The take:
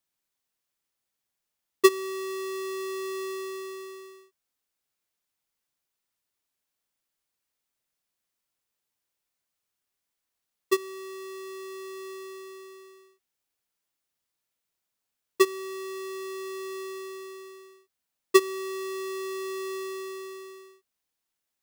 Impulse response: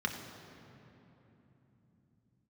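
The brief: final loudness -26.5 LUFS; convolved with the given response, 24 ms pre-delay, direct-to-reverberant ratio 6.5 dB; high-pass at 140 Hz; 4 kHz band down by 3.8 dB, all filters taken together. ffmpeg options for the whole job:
-filter_complex "[0:a]highpass=140,equalizer=f=4000:t=o:g=-4.5,asplit=2[s0][s1];[1:a]atrim=start_sample=2205,adelay=24[s2];[s1][s2]afir=irnorm=-1:irlink=0,volume=0.237[s3];[s0][s3]amix=inputs=2:normalize=0,volume=1.5"

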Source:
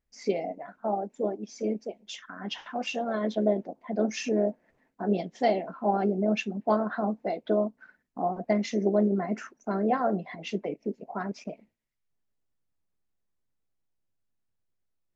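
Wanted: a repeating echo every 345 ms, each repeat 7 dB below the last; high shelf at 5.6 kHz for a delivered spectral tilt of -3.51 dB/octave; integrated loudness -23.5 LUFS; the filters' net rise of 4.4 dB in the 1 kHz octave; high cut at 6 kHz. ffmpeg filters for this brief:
-af "lowpass=6000,equalizer=f=1000:t=o:g=7,highshelf=f=5600:g=-8.5,aecho=1:1:345|690|1035|1380|1725:0.447|0.201|0.0905|0.0407|0.0183,volume=1.58"

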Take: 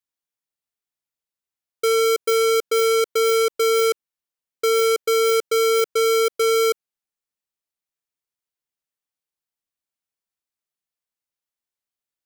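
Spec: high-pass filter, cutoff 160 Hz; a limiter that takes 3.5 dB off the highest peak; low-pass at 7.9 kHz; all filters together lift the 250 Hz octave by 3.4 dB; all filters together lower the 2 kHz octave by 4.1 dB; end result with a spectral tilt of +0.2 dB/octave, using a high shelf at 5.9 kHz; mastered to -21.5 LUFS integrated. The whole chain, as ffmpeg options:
-af "highpass=160,lowpass=7900,equalizer=f=250:t=o:g=7.5,equalizer=f=2000:t=o:g=-4,highshelf=f=5900:g=-5,alimiter=limit=0.133:level=0:latency=1"

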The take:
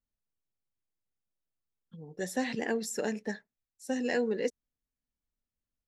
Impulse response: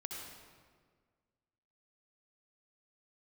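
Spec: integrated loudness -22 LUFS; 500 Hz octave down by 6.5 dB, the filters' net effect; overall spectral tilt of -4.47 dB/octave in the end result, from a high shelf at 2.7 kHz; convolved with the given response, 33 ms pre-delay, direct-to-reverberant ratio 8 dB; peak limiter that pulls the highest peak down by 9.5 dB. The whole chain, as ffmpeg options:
-filter_complex "[0:a]equalizer=f=500:t=o:g=-7,highshelf=f=2700:g=-6.5,alimiter=level_in=2.37:limit=0.0631:level=0:latency=1,volume=0.422,asplit=2[s0][s1];[1:a]atrim=start_sample=2205,adelay=33[s2];[s1][s2]afir=irnorm=-1:irlink=0,volume=0.447[s3];[s0][s3]amix=inputs=2:normalize=0,volume=8.91"

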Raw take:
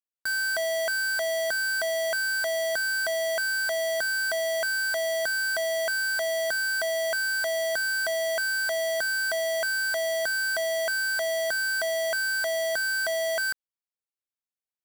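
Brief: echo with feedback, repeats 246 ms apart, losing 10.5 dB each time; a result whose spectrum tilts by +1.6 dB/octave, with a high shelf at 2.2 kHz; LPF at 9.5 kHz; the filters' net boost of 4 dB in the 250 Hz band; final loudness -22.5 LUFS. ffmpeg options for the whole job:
-af "lowpass=9500,equalizer=f=250:t=o:g=5,highshelf=f=2200:g=4,aecho=1:1:246|492|738:0.299|0.0896|0.0269,volume=1.26"

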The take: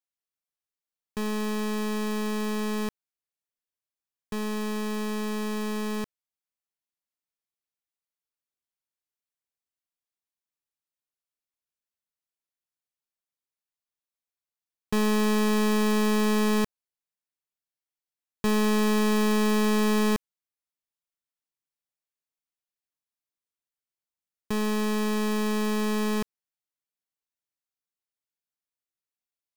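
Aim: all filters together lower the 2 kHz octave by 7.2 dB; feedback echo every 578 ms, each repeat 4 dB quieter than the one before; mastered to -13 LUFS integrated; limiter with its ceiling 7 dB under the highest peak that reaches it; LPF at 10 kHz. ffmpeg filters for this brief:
-af "lowpass=10000,equalizer=f=2000:t=o:g=-9,alimiter=level_in=1.68:limit=0.0631:level=0:latency=1,volume=0.596,aecho=1:1:578|1156|1734|2312|2890|3468|4046|4624|5202:0.631|0.398|0.25|0.158|0.0994|0.0626|0.0394|0.0249|0.0157,volume=7.5"

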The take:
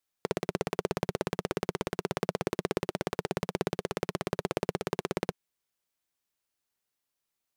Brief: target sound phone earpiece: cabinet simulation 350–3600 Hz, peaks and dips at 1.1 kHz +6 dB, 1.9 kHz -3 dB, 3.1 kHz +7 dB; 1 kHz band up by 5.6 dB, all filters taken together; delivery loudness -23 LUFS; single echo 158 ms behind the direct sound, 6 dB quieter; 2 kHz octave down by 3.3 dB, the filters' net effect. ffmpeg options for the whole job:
-af "highpass=350,equalizer=f=1100:t=q:w=4:g=6,equalizer=f=1900:t=q:w=4:g=-3,equalizer=f=3100:t=q:w=4:g=7,lowpass=f=3600:w=0.5412,lowpass=f=3600:w=1.3066,equalizer=f=1000:t=o:g=5.5,equalizer=f=2000:t=o:g=-6.5,aecho=1:1:158:0.501,volume=3.16"

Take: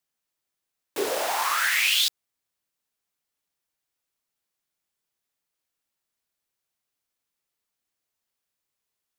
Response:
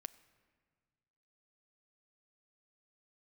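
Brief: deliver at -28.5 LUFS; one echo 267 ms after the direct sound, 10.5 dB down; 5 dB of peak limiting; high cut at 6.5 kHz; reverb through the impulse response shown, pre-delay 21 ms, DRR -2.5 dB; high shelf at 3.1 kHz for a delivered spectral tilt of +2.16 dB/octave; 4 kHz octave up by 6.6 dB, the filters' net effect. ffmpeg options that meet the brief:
-filter_complex "[0:a]lowpass=6500,highshelf=f=3100:g=6,equalizer=f=4000:t=o:g=4.5,alimiter=limit=0.355:level=0:latency=1,aecho=1:1:267:0.299,asplit=2[s0][s1];[1:a]atrim=start_sample=2205,adelay=21[s2];[s1][s2]afir=irnorm=-1:irlink=0,volume=2.37[s3];[s0][s3]amix=inputs=2:normalize=0,volume=0.224"

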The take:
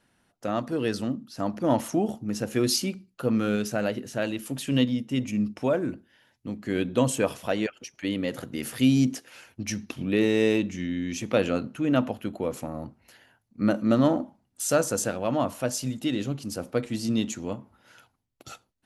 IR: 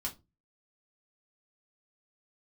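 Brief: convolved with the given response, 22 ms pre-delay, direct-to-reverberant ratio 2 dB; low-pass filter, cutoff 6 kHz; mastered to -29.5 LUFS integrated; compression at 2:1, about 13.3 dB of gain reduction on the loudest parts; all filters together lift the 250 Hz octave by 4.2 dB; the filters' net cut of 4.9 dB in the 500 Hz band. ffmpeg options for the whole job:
-filter_complex "[0:a]lowpass=6000,equalizer=f=250:t=o:g=7,equalizer=f=500:t=o:g=-8.5,acompressor=threshold=0.0126:ratio=2,asplit=2[s0][s1];[1:a]atrim=start_sample=2205,adelay=22[s2];[s1][s2]afir=irnorm=-1:irlink=0,volume=0.75[s3];[s0][s3]amix=inputs=2:normalize=0,volume=1.19"

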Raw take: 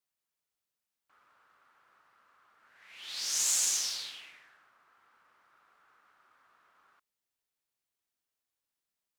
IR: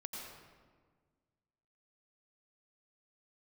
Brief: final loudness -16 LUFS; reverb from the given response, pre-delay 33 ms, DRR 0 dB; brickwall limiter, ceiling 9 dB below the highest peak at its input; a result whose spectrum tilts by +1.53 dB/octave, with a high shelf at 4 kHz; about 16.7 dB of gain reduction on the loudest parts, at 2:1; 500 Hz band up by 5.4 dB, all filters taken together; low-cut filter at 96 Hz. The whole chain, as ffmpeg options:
-filter_complex "[0:a]highpass=96,equalizer=f=500:t=o:g=6.5,highshelf=f=4000:g=8,acompressor=threshold=0.00282:ratio=2,alimiter=level_in=3.98:limit=0.0631:level=0:latency=1,volume=0.251,asplit=2[s0][s1];[1:a]atrim=start_sample=2205,adelay=33[s2];[s1][s2]afir=irnorm=-1:irlink=0,volume=1.19[s3];[s0][s3]amix=inputs=2:normalize=0,volume=21.1"

